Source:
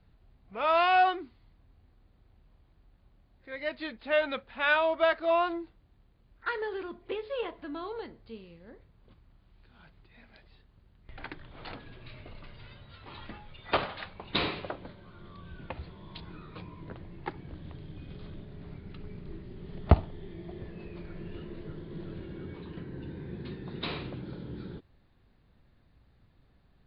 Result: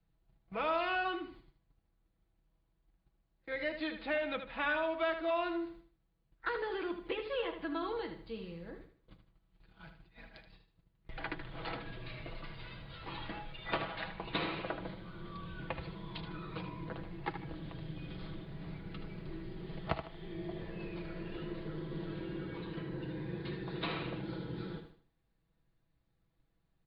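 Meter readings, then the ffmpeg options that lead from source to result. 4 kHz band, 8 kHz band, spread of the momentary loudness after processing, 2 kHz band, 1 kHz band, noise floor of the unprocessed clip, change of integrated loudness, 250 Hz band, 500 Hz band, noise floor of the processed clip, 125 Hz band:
-5.5 dB, no reading, 14 LU, -5.5 dB, -8.5 dB, -64 dBFS, -7.5 dB, -1.0 dB, -5.5 dB, -78 dBFS, -6.0 dB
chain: -filter_complex "[0:a]agate=range=0.141:threshold=0.00158:ratio=16:detection=peak,aecho=1:1:6.1:0.58,acrossover=split=370|1200|3300[s0][s1][s2][s3];[s0]acompressor=threshold=0.00631:ratio=4[s4];[s1]acompressor=threshold=0.00794:ratio=4[s5];[s2]acompressor=threshold=0.00794:ratio=4[s6];[s3]acompressor=threshold=0.00112:ratio=4[s7];[s4][s5][s6][s7]amix=inputs=4:normalize=0,asplit=2[s8][s9];[s9]aecho=0:1:77|154|231|308:0.355|0.117|0.0386|0.0128[s10];[s8][s10]amix=inputs=2:normalize=0,volume=1.26"

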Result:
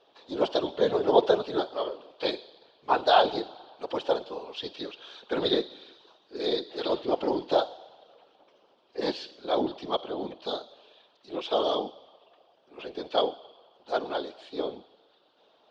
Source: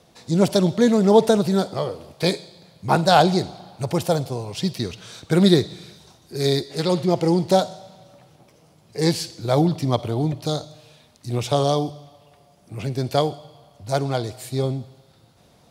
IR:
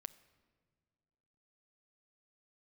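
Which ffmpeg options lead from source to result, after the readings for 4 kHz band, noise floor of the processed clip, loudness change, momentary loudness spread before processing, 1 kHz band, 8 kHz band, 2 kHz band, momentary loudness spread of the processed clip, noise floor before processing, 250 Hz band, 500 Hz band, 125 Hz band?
-5.0 dB, -65 dBFS, -7.5 dB, 16 LU, -5.0 dB, under -20 dB, -6.0 dB, 18 LU, -55 dBFS, -13.5 dB, -5.5 dB, -26.5 dB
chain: -af "highpass=f=370:w=0.5412,highpass=f=370:w=1.3066,equalizer=f=640:t=q:w=4:g=-3,equalizer=f=2100:t=q:w=4:g=-10,equalizer=f=3200:t=q:w=4:g=5,lowpass=f=3800:w=0.5412,lowpass=f=3800:w=1.3066,afftfilt=real='hypot(re,im)*cos(2*PI*random(0))':imag='hypot(re,im)*sin(2*PI*random(1))':win_size=512:overlap=0.75,volume=1.33"

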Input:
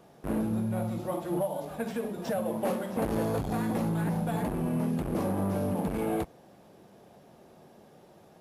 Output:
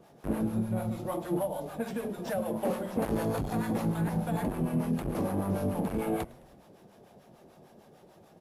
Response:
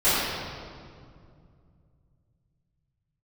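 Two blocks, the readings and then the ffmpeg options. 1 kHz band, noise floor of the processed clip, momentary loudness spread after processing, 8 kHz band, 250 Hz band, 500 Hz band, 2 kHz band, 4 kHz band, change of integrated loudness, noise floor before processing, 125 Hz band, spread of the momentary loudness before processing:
-1.0 dB, -58 dBFS, 5 LU, -0.5 dB, -0.5 dB, -1.0 dB, -1.0 dB, -1.0 dB, -1.0 dB, -56 dBFS, -0.5 dB, 5 LU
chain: -filter_complex "[0:a]acrossover=split=640[s0][s1];[s0]aeval=exprs='val(0)*(1-0.7/2+0.7/2*cos(2*PI*6.7*n/s))':c=same[s2];[s1]aeval=exprs='val(0)*(1-0.7/2-0.7/2*cos(2*PI*6.7*n/s))':c=same[s3];[s2][s3]amix=inputs=2:normalize=0,asplit=5[s4][s5][s6][s7][s8];[s5]adelay=106,afreqshift=-99,volume=0.0794[s9];[s6]adelay=212,afreqshift=-198,volume=0.0462[s10];[s7]adelay=318,afreqshift=-297,volume=0.0266[s11];[s8]adelay=424,afreqshift=-396,volume=0.0155[s12];[s4][s9][s10][s11][s12]amix=inputs=5:normalize=0,volume=1.33"

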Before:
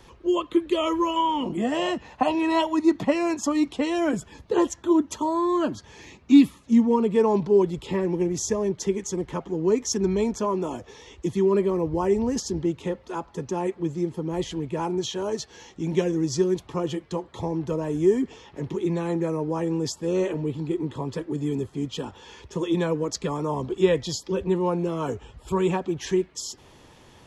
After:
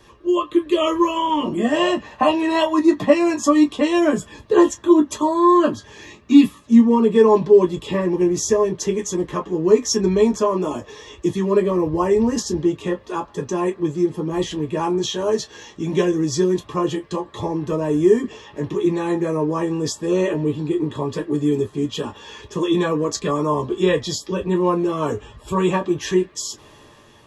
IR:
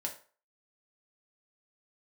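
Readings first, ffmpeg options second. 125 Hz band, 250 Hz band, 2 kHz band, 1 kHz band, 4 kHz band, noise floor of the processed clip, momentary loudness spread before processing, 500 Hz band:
+3.5 dB, +5.5 dB, +6.5 dB, +6.0 dB, +5.5 dB, -48 dBFS, 10 LU, +6.0 dB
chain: -filter_complex "[0:a]dynaudnorm=f=270:g=5:m=1.68[s0];[1:a]atrim=start_sample=2205,atrim=end_sample=3528,asetrate=83790,aresample=44100[s1];[s0][s1]afir=irnorm=-1:irlink=0,volume=2.24"

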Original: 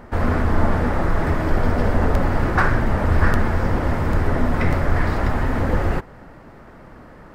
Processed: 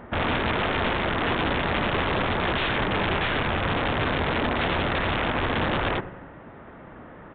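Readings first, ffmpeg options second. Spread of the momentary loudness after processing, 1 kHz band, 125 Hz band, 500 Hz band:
17 LU, -1.0 dB, -9.5 dB, -2.5 dB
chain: -filter_complex "[0:a]asplit=2[s0][s1];[s1]aecho=0:1:93|186|279|372|465:0.15|0.0823|0.0453|0.0249|0.0137[s2];[s0][s2]amix=inputs=2:normalize=0,aeval=exprs='0.178*(abs(mod(val(0)/0.178+3,4)-2)-1)':c=same,highpass=f=88:p=1,aeval=exprs='(mod(7.94*val(0)+1,2)-1)/7.94':c=same,aresample=8000,aresample=44100"

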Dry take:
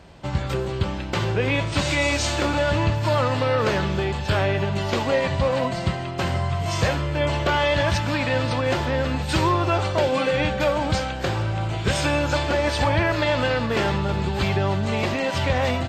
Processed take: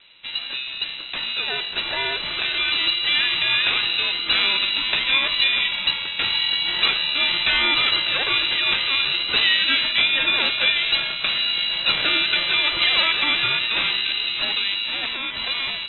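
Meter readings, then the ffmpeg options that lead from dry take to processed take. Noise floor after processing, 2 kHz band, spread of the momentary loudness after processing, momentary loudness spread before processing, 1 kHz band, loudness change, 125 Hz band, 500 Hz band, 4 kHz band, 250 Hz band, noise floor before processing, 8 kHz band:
-31 dBFS, +6.0 dB, 7 LU, 5 LU, -6.0 dB, +4.0 dB, -23.5 dB, -15.0 dB, +13.5 dB, -13.5 dB, -29 dBFS, under -40 dB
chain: -af "dynaudnorm=f=770:g=7:m=2.24,lowpass=f=3000:t=q:w=0.5098,lowpass=f=3000:t=q:w=0.6013,lowpass=f=3000:t=q:w=0.9,lowpass=f=3000:t=q:w=2.563,afreqshift=-3500,aeval=exprs='val(0)*sin(2*PI*540*n/s)':c=same,volume=0.841"

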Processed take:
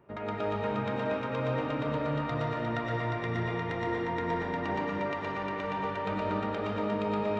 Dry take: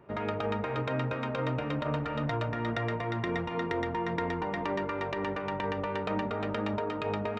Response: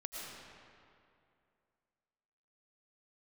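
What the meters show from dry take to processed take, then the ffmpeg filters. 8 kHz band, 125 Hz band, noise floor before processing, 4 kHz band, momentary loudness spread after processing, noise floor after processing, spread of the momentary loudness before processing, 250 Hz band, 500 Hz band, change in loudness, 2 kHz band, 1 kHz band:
no reading, -0.5 dB, -36 dBFS, -1.5 dB, 2 LU, -35 dBFS, 1 LU, +0.5 dB, +0.5 dB, +0.5 dB, +0.5 dB, +1.0 dB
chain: -filter_complex "[1:a]atrim=start_sample=2205[s0];[0:a][s0]afir=irnorm=-1:irlink=0"

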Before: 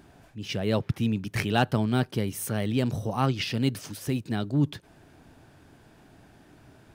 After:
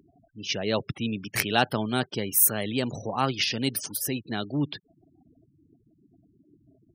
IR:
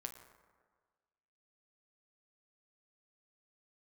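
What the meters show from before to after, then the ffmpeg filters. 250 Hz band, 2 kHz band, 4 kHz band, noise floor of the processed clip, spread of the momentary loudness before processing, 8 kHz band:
-2.5 dB, +3.5 dB, +5.5 dB, -66 dBFS, 7 LU, +11.5 dB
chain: -af "afftfilt=real='re*gte(hypot(re,im),0.00794)':imag='im*gte(hypot(re,im),0.00794)':win_size=1024:overlap=0.75,aemphasis=mode=production:type=bsi,volume=1.26"

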